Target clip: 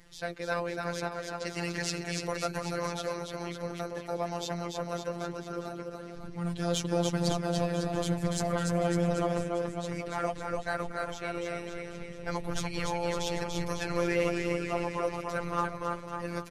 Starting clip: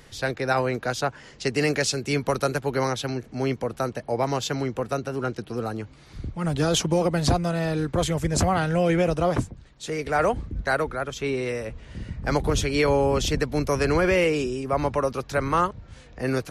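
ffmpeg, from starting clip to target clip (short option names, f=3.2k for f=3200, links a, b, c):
-filter_complex "[0:a]aecho=1:1:290|551|785.9|997.3|1188:0.631|0.398|0.251|0.158|0.1,flanger=delay=0.4:depth=1.8:regen=70:speed=1.1:shape=triangular,asplit=2[a][b];[b]asoftclip=type=hard:threshold=-21dB,volume=-5dB[c];[a][c]amix=inputs=2:normalize=0,afftfilt=real='hypot(re,im)*cos(PI*b)':imag='0':win_size=1024:overlap=0.75,volume=-5.5dB"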